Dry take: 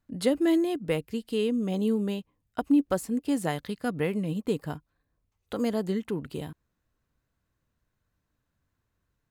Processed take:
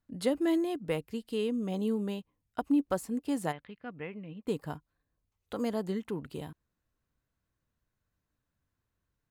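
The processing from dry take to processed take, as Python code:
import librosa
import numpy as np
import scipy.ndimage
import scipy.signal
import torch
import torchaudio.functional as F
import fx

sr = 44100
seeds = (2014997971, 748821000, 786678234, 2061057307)

y = fx.ladder_lowpass(x, sr, hz=3000.0, resonance_pct=45, at=(3.51, 4.46), fade=0.02)
y = fx.dynamic_eq(y, sr, hz=940.0, q=1.4, threshold_db=-46.0, ratio=4.0, max_db=4)
y = y * librosa.db_to_amplitude(-5.0)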